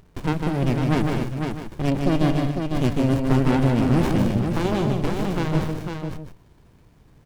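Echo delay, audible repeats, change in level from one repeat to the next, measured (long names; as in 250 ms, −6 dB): 153 ms, 5, repeats not evenly spaced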